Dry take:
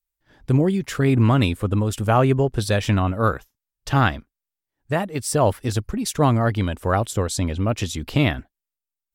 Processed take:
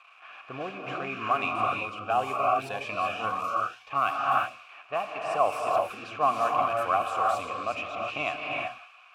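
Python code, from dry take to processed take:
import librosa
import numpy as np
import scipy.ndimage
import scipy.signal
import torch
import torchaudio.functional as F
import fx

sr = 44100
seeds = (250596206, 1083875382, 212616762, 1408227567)

y = x + 0.5 * 10.0 ** (-16.5 / 20.0) * np.diff(np.sign(x), prepend=np.sign(x[:1]))
y = fx.vowel_filter(y, sr, vowel='a')
y = fx.high_shelf(y, sr, hz=9100.0, db=3.5)
y = fx.hum_notches(y, sr, base_hz=60, count=2)
y = fx.rev_gated(y, sr, seeds[0], gate_ms=400, shape='rising', drr_db=0.0)
y = fx.env_lowpass(y, sr, base_hz=2000.0, full_db=-24.5)
y = fx.band_shelf(y, sr, hz=1700.0, db=9.5, octaves=1.7)
y = fx.notch_cascade(y, sr, direction='rising', hz=1.9, at=(1.89, 4.09))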